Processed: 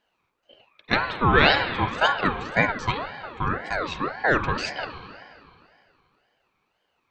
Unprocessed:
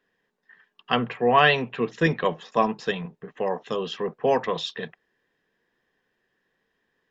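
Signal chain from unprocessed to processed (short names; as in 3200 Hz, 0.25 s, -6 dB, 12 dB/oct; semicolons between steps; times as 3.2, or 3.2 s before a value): spring tank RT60 2.4 s, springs 33/38 ms, chirp 40 ms, DRR 7.5 dB; ring modulator with a swept carrier 910 Hz, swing 40%, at 1.9 Hz; gain +3 dB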